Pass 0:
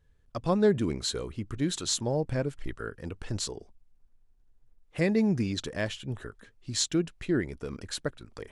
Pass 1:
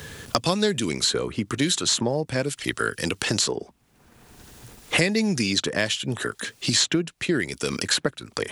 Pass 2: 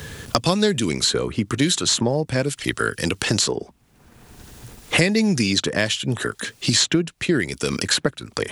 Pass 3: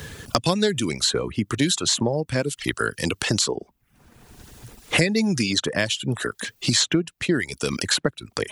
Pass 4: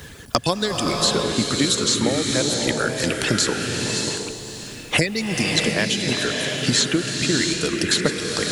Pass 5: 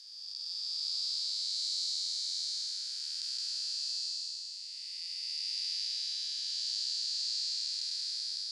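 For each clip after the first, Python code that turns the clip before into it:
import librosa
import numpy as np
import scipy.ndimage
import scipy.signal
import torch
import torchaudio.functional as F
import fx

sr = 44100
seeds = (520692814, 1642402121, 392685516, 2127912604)

y1 = scipy.signal.sosfilt(scipy.signal.butter(2, 120.0, 'highpass', fs=sr, output='sos'), x)
y1 = fx.high_shelf(y1, sr, hz=2000.0, db=9.5)
y1 = fx.band_squash(y1, sr, depth_pct=100)
y1 = y1 * 10.0 ** (4.0 / 20.0)
y2 = fx.low_shelf(y1, sr, hz=180.0, db=4.5)
y2 = y2 * 10.0 ** (2.5 / 20.0)
y3 = fx.dereverb_blind(y2, sr, rt60_s=0.56)
y3 = y3 * 10.0 ** (-1.5 / 20.0)
y4 = fx.reverse_delay(y3, sr, ms=616, wet_db=-10.5)
y4 = fx.hpss(y4, sr, part='percussive', gain_db=7)
y4 = fx.rev_bloom(y4, sr, seeds[0], attack_ms=670, drr_db=1.0)
y4 = y4 * 10.0 ** (-5.5 / 20.0)
y5 = fx.spec_blur(y4, sr, span_ms=531.0)
y5 = fx.ladder_bandpass(y5, sr, hz=4900.0, resonance_pct=85)
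y5 = y5 * 10.0 ** (-3.0 / 20.0)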